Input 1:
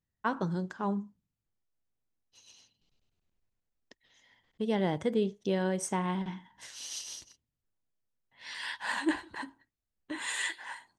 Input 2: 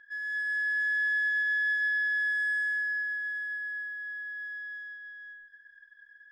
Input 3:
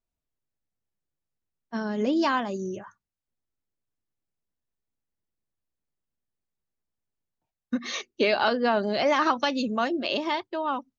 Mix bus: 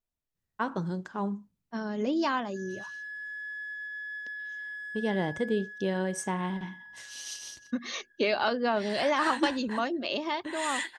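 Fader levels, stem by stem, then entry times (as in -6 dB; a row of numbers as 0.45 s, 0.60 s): 0.0 dB, -11.0 dB, -4.0 dB; 0.35 s, 2.45 s, 0.00 s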